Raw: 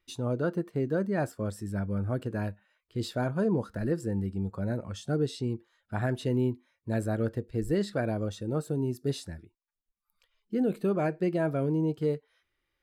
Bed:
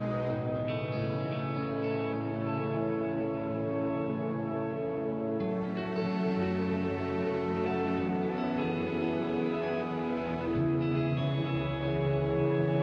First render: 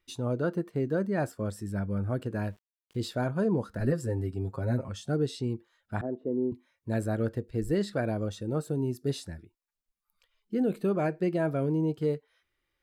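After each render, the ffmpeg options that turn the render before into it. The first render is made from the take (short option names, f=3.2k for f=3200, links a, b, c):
-filter_complex "[0:a]asettb=1/sr,asplit=3[a][b][c];[a]atrim=end=2.354[d];[b]atrim=start=2.35:end=3.05,asetpts=PTS-STARTPTS,afade=t=in:d=0.004:c=qsin,afade=t=out:st=0.696:d=0.004:c=qsin,aeval=exprs='val(0)*gte(abs(val(0)),0.0015)':c=same[e];[c]atrim=start=3.046[f];[d][e]acrossfade=d=0.004:c1=hsin:c2=qsin[g];[g][f]acrossfade=d=0.004:c1=qsin:c2=hsin,asettb=1/sr,asplit=3[h][i][j];[h]atrim=end=3.794[k];[i]atrim=start=3.79:end=4.89,asetpts=PTS-STARTPTS,afade=t=in:d=0.004:c=qsin,afade=t=out:st=1.096:d=0.004:c=qsin,aecho=1:1:7.5:0.9,atrim=end_sample=48510[l];[j]atrim=start=4.886[m];[k][l]acrossfade=d=0.004:c1=hsin:c2=qsin[n];[n][m]acrossfade=d=0.004:c1=qsin:c2=hsin,asettb=1/sr,asplit=3[o][p][q];[o]atrim=end=6.014[r];[p]atrim=start=6.01:end=6.52,asetpts=PTS-STARTPTS,afade=t=in:d=0.004:c=qsin,afade=t=out:st=0.506:d=0.004:c=qsin,asuperpass=centerf=380:order=4:qfactor=0.94[s];[q]atrim=start=6.516[t];[r][s]acrossfade=d=0.004:c1=hsin:c2=qsin[u];[u][t]acrossfade=d=0.004:c1=qsin:c2=hsin"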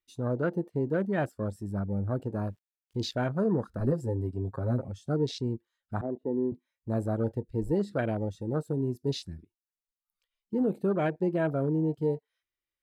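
-af "highshelf=f=2.7k:g=7.5,afwtdn=0.0126"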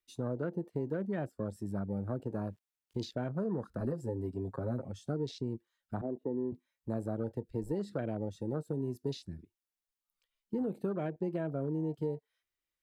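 -filter_complex "[0:a]acrossover=split=130|650[a][b][c];[a]acompressor=threshold=-48dB:ratio=4[d];[b]acompressor=threshold=-34dB:ratio=4[e];[c]acompressor=threshold=-47dB:ratio=4[f];[d][e][f]amix=inputs=3:normalize=0"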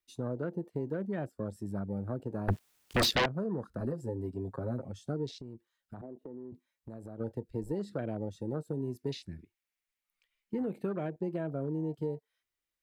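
-filter_complex "[0:a]asettb=1/sr,asplit=3[a][b][c];[a]atrim=end=2.484[d];[b]atrim=start=2.48:end=3.26,asetpts=PTS-STARTPTS,afade=t=in:d=0.004:c=qsin,afade=t=out:st=0.776:d=0.004:c=qsin,aeval=exprs='0.075*sin(PI/2*7.94*val(0)/0.075)':c=same[e];[c]atrim=start=3.256[f];[d][e]acrossfade=d=0.004:c1=hsin:c2=qsin[g];[g][f]acrossfade=d=0.004:c1=qsin:c2=hsin,asplit=3[h][i][j];[h]afade=t=out:st=5.3:d=0.02[k];[i]acompressor=threshold=-41dB:ratio=6:attack=3.2:release=140:knee=1:detection=peak,afade=t=in:st=5.3:d=0.02,afade=t=out:st=7.19:d=0.02[l];[j]afade=t=in:st=7.19:d=0.02[m];[k][l][m]amix=inputs=3:normalize=0,asettb=1/sr,asplit=3[n][o][p];[n]atrim=end=8.984[q];[o]atrim=start=8.98:end=10.99,asetpts=PTS-STARTPTS,afade=t=in:d=0.004:c=qsin,afade=t=out:st=2.006:d=0.004:c=qsin,equalizer=f=2.2k:t=o:w=0.8:g=11[r];[p]atrim=start=10.986[s];[q][r]acrossfade=d=0.004:c1=hsin:c2=qsin[t];[t][s]acrossfade=d=0.004:c1=qsin:c2=hsin"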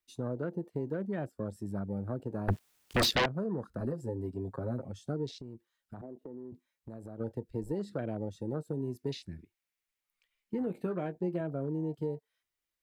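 -filter_complex "[0:a]asettb=1/sr,asplit=3[a][b][c];[a]atrim=end=10.654[d];[b]atrim=start=10.65:end=11.41,asetpts=PTS-STARTPTS,afade=t=in:d=0.004:c=qsin,afade=t=out:st=0.756:d=0.004:c=qsin,asplit=2[e][f];[f]adelay=17,volume=-9dB[g];[e][g]amix=inputs=2:normalize=0,atrim=end_sample=33516[h];[c]atrim=start=11.406[i];[d][h]acrossfade=d=0.004:c1=hsin:c2=qsin[j];[j][i]acrossfade=d=0.004:c1=qsin:c2=hsin"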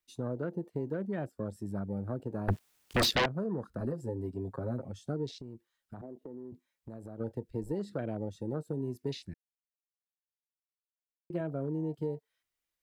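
-filter_complex "[0:a]asplit=3[a][b][c];[a]atrim=end=9.34,asetpts=PTS-STARTPTS,afade=t=out:st=9.336:d=0.004:c=hsin[d];[b]atrim=start=9.34:end=11.3,asetpts=PTS-STARTPTS,volume=0[e];[c]atrim=start=11.3,asetpts=PTS-STARTPTS,afade=t=in:d=0.004:c=hsin[f];[d][e][f]concat=n=3:v=0:a=1"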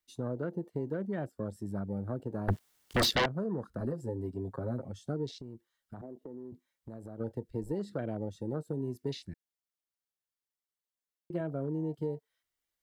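-af "bandreject=f=2.5k:w=12"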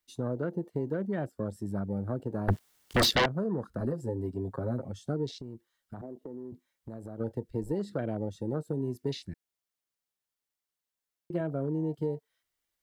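-af "volume=3dB"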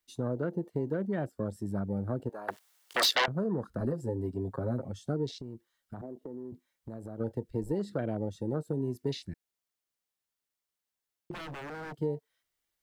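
-filter_complex "[0:a]asettb=1/sr,asplit=3[a][b][c];[a]atrim=end=2.294[d];[b]atrim=start=2.29:end=3.28,asetpts=PTS-STARTPTS,afade=t=in:d=0.004:c=qsin,afade=t=out:st=0.986:d=0.004:c=qsin,highpass=650[e];[c]atrim=start=3.276[f];[d][e]acrossfade=d=0.004:c1=hsin:c2=qsin[g];[g][f]acrossfade=d=0.004:c1=qsin:c2=hsin,asettb=1/sr,asplit=3[h][i][j];[h]atrim=end=11.314[k];[i]atrim=start=11.31:end=11.95,asetpts=PTS-STARTPTS,afade=t=in:d=0.004:c=qsin,afade=t=out:st=0.636:d=0.004:c=qsin,aeval=exprs='0.015*(abs(mod(val(0)/0.015+3,4)-2)-1)':c=same[l];[j]atrim=start=11.946[m];[k][l]acrossfade=d=0.004:c1=hsin:c2=qsin[n];[n][m]acrossfade=d=0.004:c1=qsin:c2=hsin"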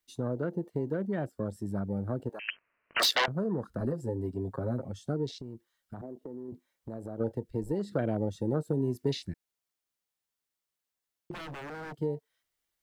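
-filter_complex "[0:a]asettb=1/sr,asplit=3[a][b][c];[a]atrim=end=2.394[d];[b]atrim=start=2.39:end=3,asetpts=PTS-STARTPTS,afade=t=in:d=0.004:c=qsin,afade=t=out:st=0.606:d=0.004:c=qsin,lowpass=f=2.8k:t=q:w=0.5098,lowpass=f=2.8k:t=q:w=0.6013,lowpass=f=2.8k:t=q:w=0.9,lowpass=f=2.8k:t=q:w=2.563,afreqshift=-3300[e];[c]atrim=start=2.996[f];[d][e]acrossfade=d=0.004:c1=hsin:c2=qsin[g];[g][f]acrossfade=d=0.004:c1=qsin:c2=hsin,asettb=1/sr,asplit=3[h][i][j];[h]atrim=end=6.484[k];[i]atrim=start=6.48:end=7.37,asetpts=PTS-STARTPTS,afade=t=in:d=0.004:c=qsin,afade=t=out:st=0.886:d=0.004:c=qsin,equalizer=f=550:t=o:w=2.2:g=4[l];[j]atrim=start=7.366[m];[k][l]acrossfade=d=0.004:c1=hsin:c2=qsin[n];[n][m]acrossfade=d=0.004:c1=qsin:c2=hsin,asplit=3[o][p][q];[o]atrim=end=7.922[r];[p]atrim=start=7.918:end=9.322,asetpts=PTS-STARTPTS,volume=3dB[s];[q]atrim=start=9.318[t];[r][s]acrossfade=d=0.004:c1=hsin:c2=hsin[u];[u][t]acrossfade=d=0.004:c1=hsin:c2=hsin"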